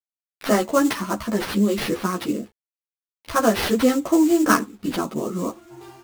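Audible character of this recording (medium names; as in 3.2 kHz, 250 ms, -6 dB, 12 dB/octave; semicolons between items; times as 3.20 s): aliases and images of a low sample rate 7.5 kHz, jitter 20%; tremolo saw down 0.54 Hz, depth 30%; a quantiser's noise floor 10-bit, dither none; a shimmering, thickened sound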